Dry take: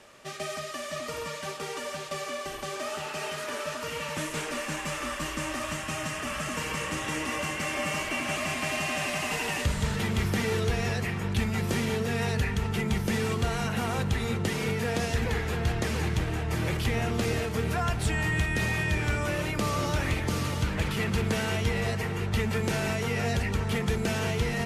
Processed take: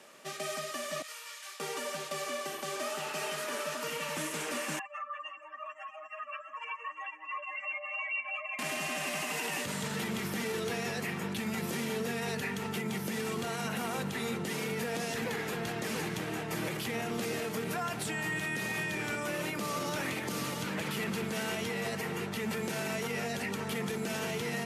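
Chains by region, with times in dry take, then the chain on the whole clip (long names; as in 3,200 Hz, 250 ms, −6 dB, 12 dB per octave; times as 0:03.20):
0:01.02–0:01.60: high-pass filter 1,500 Hz + micro pitch shift up and down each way 38 cents
0:04.79–0:08.59: expanding power law on the bin magnitudes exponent 3.4 + high-pass filter 840 Hz 24 dB per octave + delay that swaps between a low-pass and a high-pass 171 ms, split 1,100 Hz, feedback 72%, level −12.5 dB
whole clip: high-pass filter 160 Hz 24 dB per octave; high-shelf EQ 12,000 Hz +11.5 dB; brickwall limiter −23.5 dBFS; level −2 dB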